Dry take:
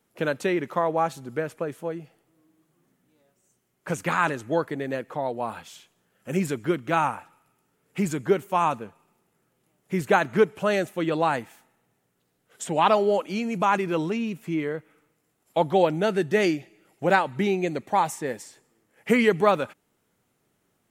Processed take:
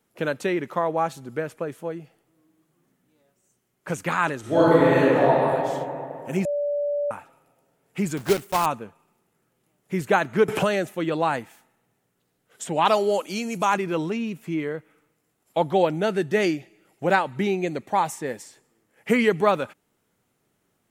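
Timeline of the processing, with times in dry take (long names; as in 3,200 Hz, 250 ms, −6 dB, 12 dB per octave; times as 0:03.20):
0:04.40–0:05.27: thrown reverb, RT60 2.7 s, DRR −11.5 dB
0:06.45–0:07.11: beep over 580 Hz −22 dBFS
0:08.17–0:08.68: one scale factor per block 3 bits
0:10.48–0:10.95: multiband upward and downward compressor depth 100%
0:12.85–0:13.74: bass and treble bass −3 dB, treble +11 dB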